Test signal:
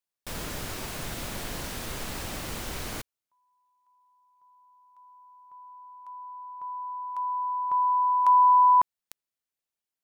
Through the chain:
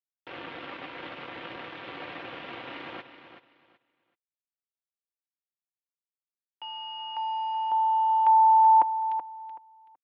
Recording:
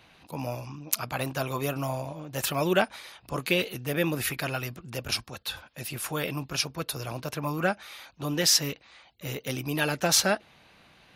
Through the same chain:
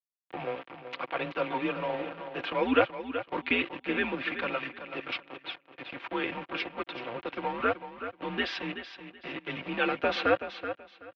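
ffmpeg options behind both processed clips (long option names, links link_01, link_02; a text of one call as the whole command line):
ffmpeg -i in.wav -filter_complex "[0:a]aeval=exprs='val(0)*gte(abs(val(0)),0.0211)':channel_layout=same,aecho=1:1:4.7:0.5,asplit=2[link_01][link_02];[link_02]aecho=0:1:378|756|1134:0.299|0.0687|0.0158[link_03];[link_01][link_03]amix=inputs=2:normalize=0,highpass=frequency=330:width_type=q:width=0.5412,highpass=frequency=330:width_type=q:width=1.307,lowpass=frequency=3300:width_type=q:width=0.5176,lowpass=frequency=3300:width_type=q:width=0.7071,lowpass=frequency=3300:width_type=q:width=1.932,afreqshift=-110" out.wav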